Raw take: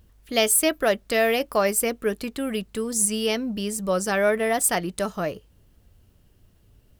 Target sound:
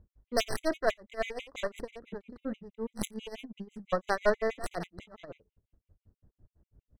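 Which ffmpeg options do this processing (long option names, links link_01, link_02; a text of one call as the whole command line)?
ffmpeg -i in.wav -af "aeval=exprs='0.473*(cos(1*acos(clip(val(0)/0.473,-1,1)))-cos(1*PI/2))+0.237*(cos(2*acos(clip(val(0)/0.473,-1,1)))-cos(2*PI/2))+0.0473*(cos(3*acos(clip(val(0)/0.473,-1,1)))-cos(3*PI/2))':channel_layout=same,adynamicsmooth=sensitivity=1.5:basefreq=1000,aecho=1:1:88:0.188,tremolo=f=5.6:d=0.92,afftfilt=real='re*gt(sin(2*PI*6.1*pts/sr)*(1-2*mod(floor(b*sr/1024/2000),2)),0)':imag='im*gt(sin(2*PI*6.1*pts/sr)*(1-2*mod(floor(b*sr/1024/2000),2)),0)':win_size=1024:overlap=0.75" out.wav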